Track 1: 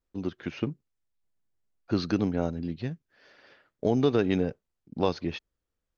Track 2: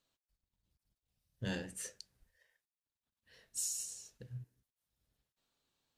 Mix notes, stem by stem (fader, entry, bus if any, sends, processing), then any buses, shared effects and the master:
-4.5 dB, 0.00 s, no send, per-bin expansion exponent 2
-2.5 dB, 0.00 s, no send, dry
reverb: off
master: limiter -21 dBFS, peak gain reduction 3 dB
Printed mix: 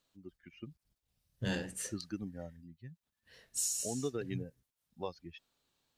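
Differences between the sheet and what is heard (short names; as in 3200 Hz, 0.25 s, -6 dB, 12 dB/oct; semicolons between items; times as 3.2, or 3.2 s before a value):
stem 1 -4.5 dB -> -11.0 dB; stem 2 -2.5 dB -> +3.5 dB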